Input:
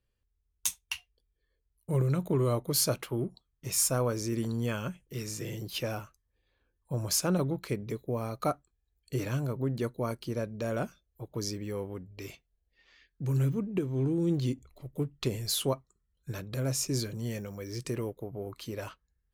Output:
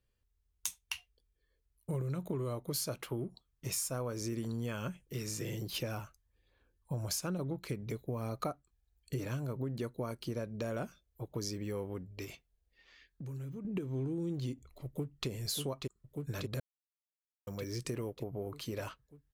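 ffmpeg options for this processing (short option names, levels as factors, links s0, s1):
-filter_complex "[0:a]asettb=1/sr,asplit=3[s0][s1][s2];[s0]atrim=end=5.694[s3];[s1]atrim=start=5.69:end=9.27,asetpts=PTS-STARTPTS,afade=t=in:d=0.004:c=qsin,afade=t=out:st=3.576:d=0.004:c=qsin,aphaser=in_gain=1:out_gain=1:delay=1.4:decay=0.29:speed=1.1:type=sinusoidal[s4];[s2]atrim=start=9.266[s5];[s3][s4]acrossfade=d=0.004:c1=hsin:c2=qsin[s6];[s6][s5]acrossfade=d=0.004:c1=qsin:c2=hsin,asettb=1/sr,asplit=3[s7][s8][s9];[s7]atrim=end=12.244[s10];[s8]atrim=start=12.24:end=13.65,asetpts=PTS-STARTPTS,afade=t=in:d=0.004:c=qsin,afade=t=out:st=1.406:d=0.004:c=qsin,acompressor=threshold=0.00891:ratio=6:attack=3.2:release=140:knee=1:detection=peak[s11];[s9]atrim=start=13.646[s12];[s10][s11]acrossfade=d=0.004:c1=hsin:c2=qsin[s13];[s13][s12]acrossfade=d=0.004:c1=qsin:c2=hsin,asplit=2[s14][s15];[s15]afade=t=in:st=14.86:d=0.01,afade=t=out:st=15.28:d=0.01,aecho=0:1:590|1180|1770|2360|2950|3540|4130|4720|5310|5900:0.595662|0.38718|0.251667|0.163584|0.106329|0.0691141|0.0449242|0.0292007|0.0189805|0.0123373[s16];[s14][s16]amix=inputs=2:normalize=0,asplit=3[s17][s18][s19];[s17]atrim=end=16.6,asetpts=PTS-STARTPTS,afade=t=out:st=16.596:d=0.004:c=hsin[s20];[s18]atrim=start=16.6:end=17.47,asetpts=PTS-STARTPTS,volume=0[s21];[s19]atrim=start=17.47,asetpts=PTS-STARTPTS,afade=t=in:d=0.004:c=hsin[s22];[s20][s21][s22]concat=n=3:v=0:a=1,acompressor=threshold=0.02:ratio=6"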